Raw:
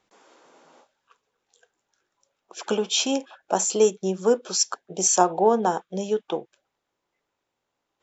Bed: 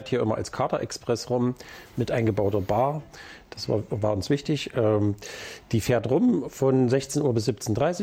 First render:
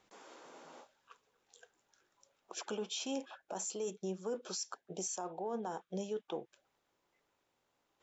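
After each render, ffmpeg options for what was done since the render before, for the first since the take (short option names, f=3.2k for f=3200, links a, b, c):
-af "areverse,acompressor=threshold=-27dB:ratio=12,areverse,alimiter=level_in=6dB:limit=-24dB:level=0:latency=1:release=324,volume=-6dB"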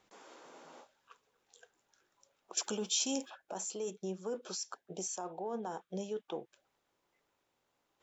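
-filter_complex "[0:a]asettb=1/sr,asplit=3[a][b][c];[a]atrim=end=2.574[d];[b]atrim=start=2.57:end=3.3,asetpts=PTS-STARTPTS,afade=t=in:d=0.004:c=qsin,afade=t=out:st=0.726:d=0.004:c=qsin,bass=f=250:g=7,treble=f=4k:g=13[e];[c]atrim=start=3.296[f];[d][e]acrossfade=d=0.004:c1=hsin:c2=qsin[g];[g][f]acrossfade=d=0.004:c1=qsin:c2=hsin"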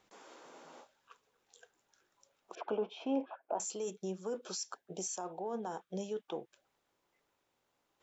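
-filter_complex "[0:a]asettb=1/sr,asplit=3[a][b][c];[a]atrim=end=2.554[d];[b]atrim=start=2.55:end=3.6,asetpts=PTS-STARTPTS,afade=t=in:d=0.004:c=qsin,afade=t=out:st=1.046:d=0.004:c=qsin,highpass=270,equalizer=f=280:t=q:w=4:g=6,equalizer=f=450:t=q:w=4:g=5,equalizer=f=670:t=q:w=4:g=9,equalizer=f=960:t=q:w=4:g=6,equalizer=f=1.8k:t=q:w=4:g=-7,lowpass=f=2.3k:w=0.5412,lowpass=f=2.3k:w=1.3066[e];[c]atrim=start=3.596[f];[d][e]acrossfade=d=0.004:c1=hsin:c2=qsin[g];[g][f]acrossfade=d=0.004:c1=qsin:c2=hsin"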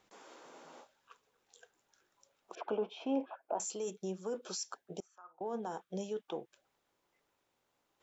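-filter_complex "[0:a]asettb=1/sr,asplit=3[a][b][c];[a]atrim=end=5.004[d];[b]atrim=start=5:end=5.41,asetpts=PTS-STARTPTS,afade=t=in:d=0.004:c=qsin,afade=t=out:st=0.406:d=0.004:c=qsin,bandpass=f=1.3k:t=q:w=7.5[e];[c]atrim=start=5.406[f];[d][e]acrossfade=d=0.004:c1=hsin:c2=qsin[g];[g][f]acrossfade=d=0.004:c1=qsin:c2=hsin"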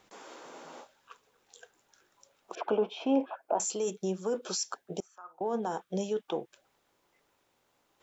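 -af "volume=7dB"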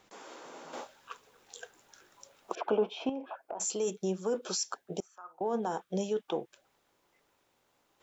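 -filter_complex "[0:a]asettb=1/sr,asplit=3[a][b][c];[a]atrim=end=0.734[d];[b]atrim=start=0.73:end=2.53,asetpts=PTS-STARTPTS,afade=t=in:d=0.004:c=qsin,afade=t=out:st=1.796:d=0.004:c=qsin,acontrast=76[e];[c]atrim=start=2.526[f];[d][e]acrossfade=d=0.004:c1=hsin:c2=qsin[g];[g][f]acrossfade=d=0.004:c1=qsin:c2=hsin,asettb=1/sr,asplit=3[h][i][j];[h]atrim=end=3.094[k];[i]atrim=start=3.09:end=3.61,asetpts=PTS-STARTPTS,afade=t=in:d=0.004:c=qsin,afade=t=out:st=0.516:d=0.004:c=qsin,acompressor=threshold=-35dB:ratio=6:attack=3.2:release=140:knee=1:detection=peak[l];[j]atrim=start=3.606[m];[k][l]acrossfade=d=0.004:c1=hsin:c2=qsin[n];[n][m]acrossfade=d=0.004:c1=qsin:c2=hsin"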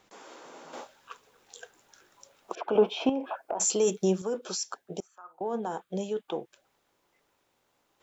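-filter_complex "[0:a]asettb=1/sr,asplit=3[a][b][c];[a]atrim=end=2.754[d];[b]atrim=start=2.75:end=4.22,asetpts=PTS-STARTPTS,afade=t=in:d=0.004:c=qsin,afade=t=out:st=1.466:d=0.004:c=qsin,acontrast=88[e];[c]atrim=start=4.216[f];[d][e]acrossfade=d=0.004:c1=hsin:c2=qsin[g];[g][f]acrossfade=d=0.004:c1=qsin:c2=hsin,asettb=1/sr,asplit=3[h][i][j];[h]atrim=end=5.074[k];[i]atrim=start=5.07:end=6.33,asetpts=PTS-STARTPTS,afade=t=in:d=0.004:c=qsin,afade=t=out:st=1.256:d=0.004:c=qsin,equalizer=f=5.6k:t=o:w=0.21:g=-8.5[l];[j]atrim=start=6.326[m];[k][l]acrossfade=d=0.004:c1=hsin:c2=qsin[n];[n][m]acrossfade=d=0.004:c1=qsin:c2=hsin"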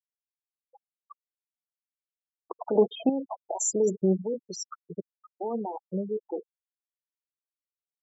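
-af "afftfilt=real='re*gte(hypot(re,im),0.0708)':imag='im*gte(hypot(re,im),0.0708)':win_size=1024:overlap=0.75,equalizer=f=160:w=0.99:g=4"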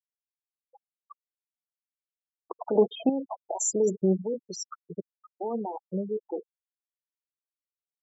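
-af anull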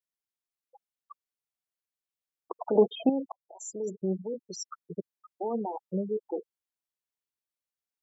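-filter_complex "[0:a]asplit=2[a][b];[a]atrim=end=3.32,asetpts=PTS-STARTPTS,afade=t=out:st=3.316:d=0.004:c=hsin[c];[b]atrim=start=3.32,asetpts=PTS-STARTPTS,afade=t=in:d=1.61[d];[c][d]concat=n=2:v=0:a=1"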